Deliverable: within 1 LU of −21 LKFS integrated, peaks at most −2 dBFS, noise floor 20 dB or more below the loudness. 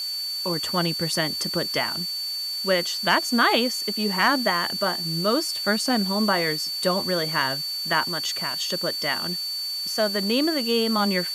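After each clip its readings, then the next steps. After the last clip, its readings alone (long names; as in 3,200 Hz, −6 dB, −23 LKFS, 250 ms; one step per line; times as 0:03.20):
interfering tone 4,500 Hz; level of the tone −27 dBFS; background noise floor −30 dBFS; target noise floor −43 dBFS; integrated loudness −23.0 LKFS; sample peak −6.5 dBFS; target loudness −21.0 LKFS
→ notch filter 4,500 Hz, Q 30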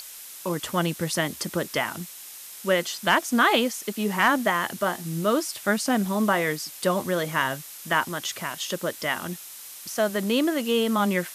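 interfering tone none found; background noise floor −42 dBFS; target noise floor −45 dBFS
→ broadband denoise 6 dB, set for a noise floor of −42 dBFS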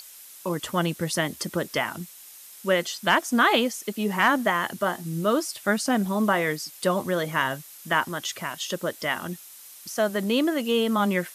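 background noise floor −46 dBFS; integrated loudness −25.0 LKFS; sample peak −7.0 dBFS; target loudness −21.0 LKFS
→ level +4 dB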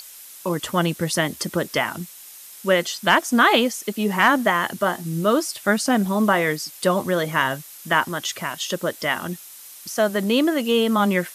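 integrated loudness −21.0 LKFS; sample peak −3.0 dBFS; background noise floor −42 dBFS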